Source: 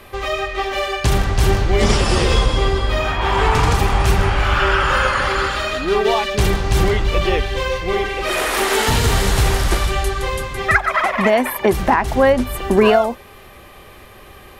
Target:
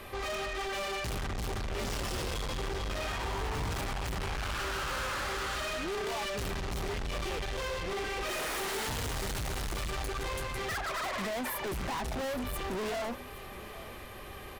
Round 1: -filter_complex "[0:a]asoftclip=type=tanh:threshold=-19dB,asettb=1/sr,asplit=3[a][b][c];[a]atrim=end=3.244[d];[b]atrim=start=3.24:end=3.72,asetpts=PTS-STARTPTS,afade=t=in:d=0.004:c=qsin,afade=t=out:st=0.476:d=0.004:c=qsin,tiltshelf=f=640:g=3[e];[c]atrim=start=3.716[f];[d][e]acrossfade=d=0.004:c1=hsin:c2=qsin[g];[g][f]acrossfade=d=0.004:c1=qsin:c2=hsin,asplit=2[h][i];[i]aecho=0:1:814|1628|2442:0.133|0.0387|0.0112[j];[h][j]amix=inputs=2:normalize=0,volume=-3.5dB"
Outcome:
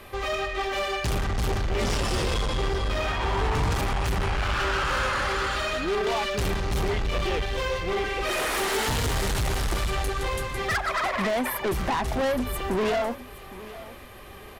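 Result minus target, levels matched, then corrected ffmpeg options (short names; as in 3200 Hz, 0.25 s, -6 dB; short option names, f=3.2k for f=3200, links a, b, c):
soft clip: distortion -5 dB
-filter_complex "[0:a]asoftclip=type=tanh:threshold=-30dB,asettb=1/sr,asplit=3[a][b][c];[a]atrim=end=3.244[d];[b]atrim=start=3.24:end=3.72,asetpts=PTS-STARTPTS,afade=t=in:d=0.004:c=qsin,afade=t=out:st=0.476:d=0.004:c=qsin,tiltshelf=f=640:g=3[e];[c]atrim=start=3.716[f];[d][e]acrossfade=d=0.004:c1=hsin:c2=qsin[g];[g][f]acrossfade=d=0.004:c1=qsin:c2=hsin,asplit=2[h][i];[i]aecho=0:1:814|1628|2442:0.133|0.0387|0.0112[j];[h][j]amix=inputs=2:normalize=0,volume=-3.5dB"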